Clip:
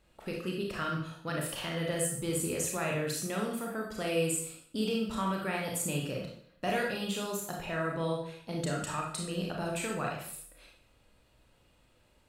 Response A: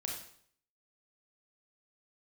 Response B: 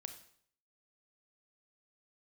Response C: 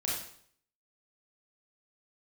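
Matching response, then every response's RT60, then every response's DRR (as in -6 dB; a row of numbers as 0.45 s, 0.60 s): A; 0.60 s, 0.60 s, 0.60 s; -1.0 dB, 7.0 dB, -5.5 dB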